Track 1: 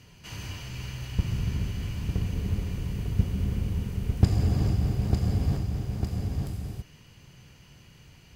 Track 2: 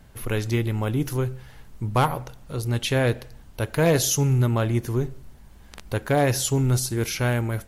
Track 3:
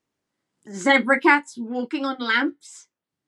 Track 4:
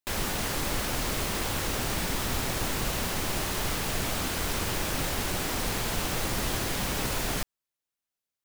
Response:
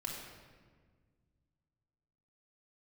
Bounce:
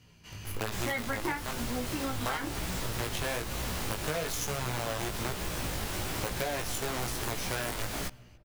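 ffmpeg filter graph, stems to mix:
-filter_complex "[0:a]acompressor=threshold=0.0398:ratio=6,volume=0.708[s0];[1:a]acrusher=bits=4:dc=4:mix=0:aa=0.000001,acrossover=split=480|3000[s1][s2][s3];[s1]acompressor=threshold=0.0398:ratio=6[s4];[s4][s2][s3]amix=inputs=3:normalize=0,adelay=300,volume=1.12,asplit=2[s5][s6];[s6]volume=0.112[s7];[2:a]volume=0.794[s8];[3:a]adelay=650,volume=1.12,asplit=2[s9][s10];[s10]volume=0.0668[s11];[4:a]atrim=start_sample=2205[s12];[s7][s11]amix=inputs=2:normalize=0[s13];[s13][s12]afir=irnorm=-1:irlink=0[s14];[s0][s5][s8][s9][s14]amix=inputs=5:normalize=0,flanger=delay=16:depth=3.8:speed=1.1,acompressor=threshold=0.0316:ratio=6"

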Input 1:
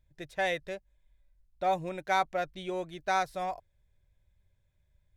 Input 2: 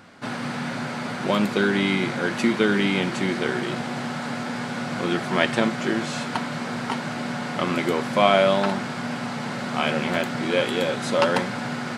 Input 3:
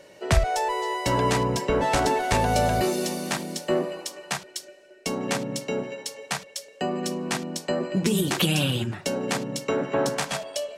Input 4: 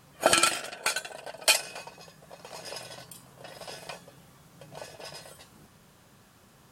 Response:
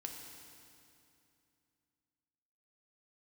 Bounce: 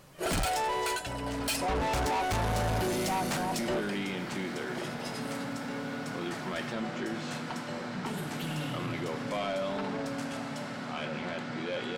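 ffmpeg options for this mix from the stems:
-filter_complex "[0:a]lowpass=f=920:t=q:w=6.1,volume=0.708,asplit=2[s0][s1];[1:a]lowpass=6300,adelay=1150,volume=0.266,asplit=2[s2][s3];[s3]volume=0.501[s4];[2:a]equalizer=f=69:w=0.96:g=10.5,aeval=exprs='0.398*sin(PI/2*1.78*val(0)/0.398)':c=same,volume=0.447,asplit=2[s5][s6];[s6]volume=0.188[s7];[3:a]volume=1.06[s8];[s1]apad=whole_len=475264[s9];[s5][s9]sidechaingate=range=0.0224:threshold=0.001:ratio=16:detection=peak[s10];[4:a]atrim=start_sample=2205[s11];[s4][s7]amix=inputs=2:normalize=0[s12];[s12][s11]afir=irnorm=-1:irlink=0[s13];[s0][s2][s10][s8][s13]amix=inputs=5:normalize=0,asoftclip=type=tanh:threshold=0.0668,alimiter=level_in=1.41:limit=0.0631:level=0:latency=1:release=14,volume=0.708"

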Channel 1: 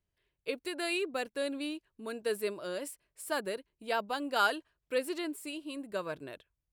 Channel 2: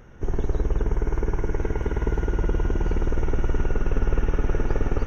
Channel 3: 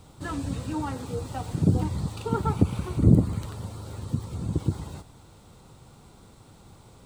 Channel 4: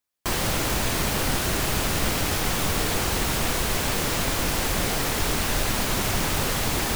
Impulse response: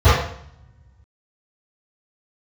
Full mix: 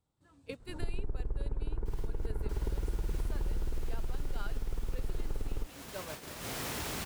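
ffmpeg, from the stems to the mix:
-filter_complex "[0:a]volume=0.501,asplit=2[s0][s1];[1:a]lowpass=1300,lowshelf=f=68:g=10,adelay=600,volume=0.891[s2];[2:a]volume=0.119[s3];[3:a]highpass=58,adelay=1600,volume=0.376,asplit=2[s4][s5];[s5]volume=0.398[s6];[s1]apad=whole_len=377076[s7];[s4][s7]sidechaincompress=threshold=0.00126:ratio=6:attack=16:release=333[s8];[s2][s3][s8]amix=inputs=3:normalize=0,acompressor=threshold=0.178:ratio=6,volume=1[s9];[s6]aecho=0:1:635:1[s10];[s0][s9][s10]amix=inputs=3:normalize=0,agate=range=0.224:threshold=0.0112:ratio=16:detection=peak,acompressor=threshold=0.0158:ratio=2.5"

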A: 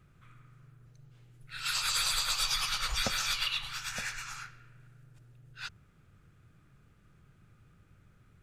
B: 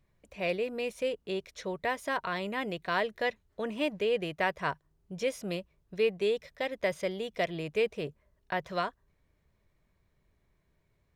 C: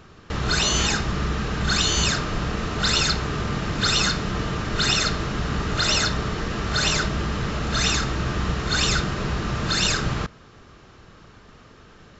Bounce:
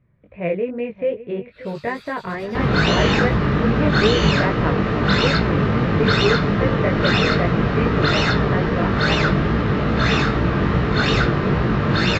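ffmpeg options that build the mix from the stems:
-filter_complex "[0:a]volume=0.106[s0];[1:a]lowpass=f=2400:w=0.5412,lowpass=f=2400:w=1.3066,equalizer=f=98:w=0.5:g=12,volume=0.891,asplit=2[s1][s2];[s2]volume=0.168[s3];[2:a]lowpass=f=1600:p=1,adelay=2250,volume=1.41[s4];[s3]aecho=0:1:583:1[s5];[s0][s1][s4][s5]amix=inputs=4:normalize=0,equalizer=f=125:t=o:w=1:g=8,equalizer=f=250:t=o:w=1:g=7,equalizer=f=500:t=o:w=1:g=8,equalizer=f=1000:t=o:w=1:g=4,equalizer=f=2000:t=o:w=1:g=8,equalizer=f=4000:t=o:w=1:g=6,equalizer=f=8000:t=o:w=1:g=-6,flanger=delay=17:depth=4.3:speed=2.4"

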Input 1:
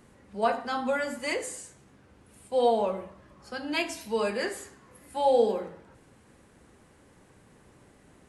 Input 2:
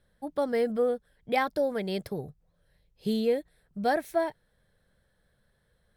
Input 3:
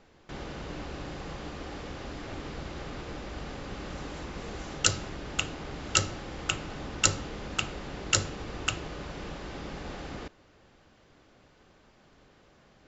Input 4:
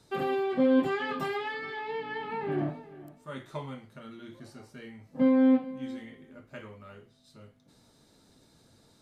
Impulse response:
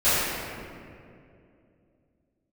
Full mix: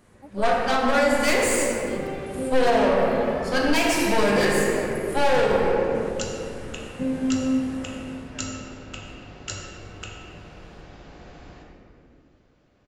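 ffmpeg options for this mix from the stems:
-filter_complex "[0:a]dynaudnorm=f=200:g=5:m=4.22,aeval=exprs='(tanh(12.6*val(0)+0.75)-tanh(0.75))/12.6':c=same,volume=1.33,asplit=2[s0][s1];[s1]volume=0.168[s2];[1:a]volume=0.316[s3];[2:a]adelay=1350,volume=0.282,asplit=2[s4][s5];[s5]volume=0.158[s6];[3:a]equalizer=f=160:w=1.5:g=12,adelay=1800,volume=0.376,asplit=2[s7][s8];[s8]volume=0.15[s9];[4:a]atrim=start_sample=2205[s10];[s2][s6][s9]amix=inputs=3:normalize=0[s11];[s11][s10]afir=irnorm=-1:irlink=0[s12];[s0][s3][s4][s7][s12]amix=inputs=5:normalize=0,alimiter=limit=0.316:level=0:latency=1:release=173"

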